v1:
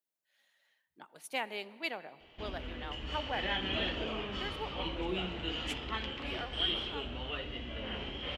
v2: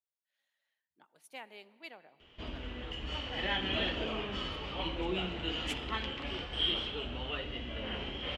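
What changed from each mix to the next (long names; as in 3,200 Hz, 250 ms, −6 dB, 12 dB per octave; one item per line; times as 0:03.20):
speech −11.0 dB
background: send +11.0 dB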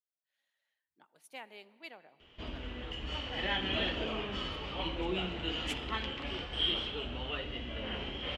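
nothing changed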